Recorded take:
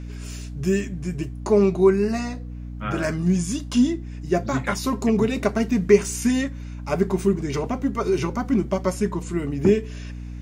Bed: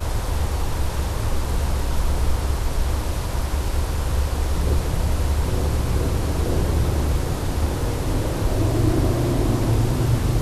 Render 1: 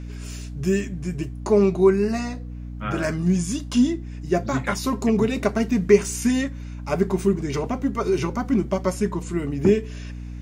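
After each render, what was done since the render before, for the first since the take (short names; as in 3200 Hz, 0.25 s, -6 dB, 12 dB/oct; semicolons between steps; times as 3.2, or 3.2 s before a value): nothing audible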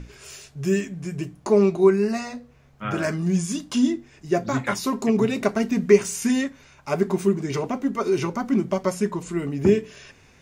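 notches 60/120/180/240/300 Hz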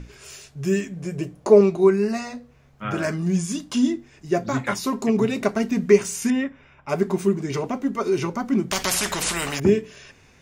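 0.96–1.61 bell 520 Hz +9.5 dB; 6.3–6.89 polynomial smoothing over 25 samples; 8.71–9.6 spectral compressor 4:1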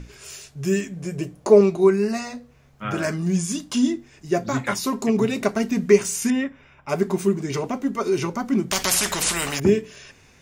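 high shelf 4700 Hz +4.5 dB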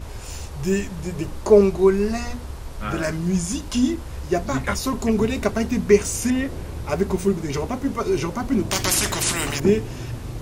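add bed -11.5 dB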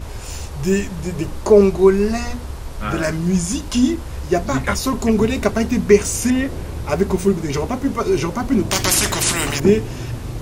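gain +4 dB; limiter -1 dBFS, peak gain reduction 3 dB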